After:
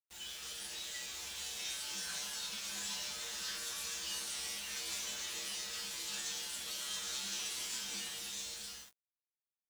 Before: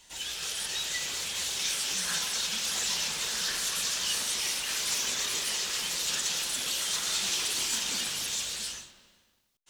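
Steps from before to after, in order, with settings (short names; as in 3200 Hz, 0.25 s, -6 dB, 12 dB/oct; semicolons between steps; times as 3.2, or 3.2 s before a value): resonator 67 Hz, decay 0.51 s, harmonics odd, mix 90%; bit-crush 9-bit; gain +1 dB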